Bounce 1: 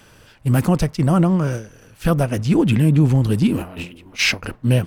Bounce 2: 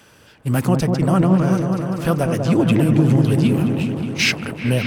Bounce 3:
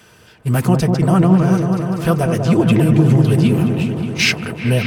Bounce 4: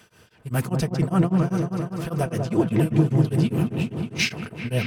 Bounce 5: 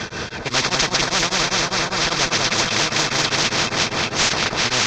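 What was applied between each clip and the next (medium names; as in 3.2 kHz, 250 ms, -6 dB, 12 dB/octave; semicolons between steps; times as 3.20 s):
high-pass 140 Hz 6 dB/octave; delay with an opening low-pass 195 ms, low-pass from 750 Hz, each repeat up 1 oct, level -3 dB
comb of notches 280 Hz; trim +3.5 dB
tremolo of two beating tones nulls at 5 Hz; trim -5 dB
CVSD coder 32 kbps; band-stop 2.9 kHz, Q 7.5; spectrum-flattening compressor 10:1; trim +3.5 dB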